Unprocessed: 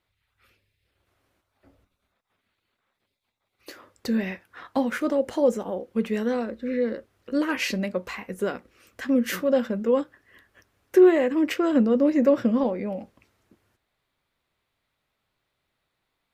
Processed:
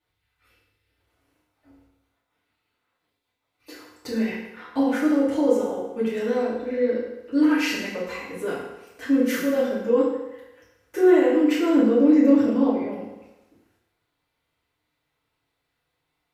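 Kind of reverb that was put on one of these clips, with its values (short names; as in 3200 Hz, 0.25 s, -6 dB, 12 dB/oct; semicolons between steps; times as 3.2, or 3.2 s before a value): FDN reverb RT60 1 s, low-frequency decay 0.8×, high-frequency decay 0.85×, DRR -9.5 dB; gain -9 dB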